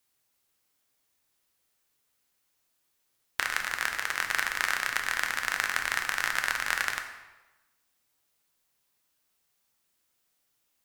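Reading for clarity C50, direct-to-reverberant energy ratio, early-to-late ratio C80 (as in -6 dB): 7.5 dB, 4.0 dB, 9.5 dB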